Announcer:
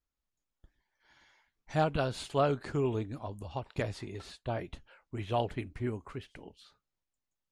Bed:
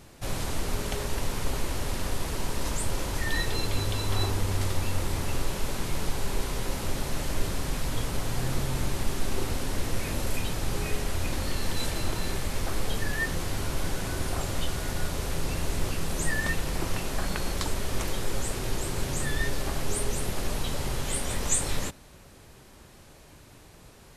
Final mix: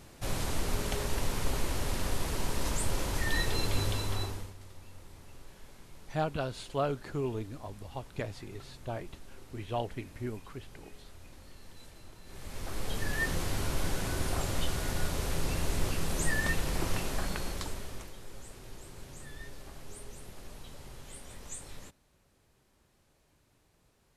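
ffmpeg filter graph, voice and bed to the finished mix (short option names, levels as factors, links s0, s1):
-filter_complex "[0:a]adelay=4400,volume=0.708[s0];[1:a]volume=8.41,afade=t=out:st=3.86:d=0.68:silence=0.0944061,afade=t=in:st=12.25:d=1.03:silence=0.0944061,afade=t=out:st=16.97:d=1.14:silence=0.16788[s1];[s0][s1]amix=inputs=2:normalize=0"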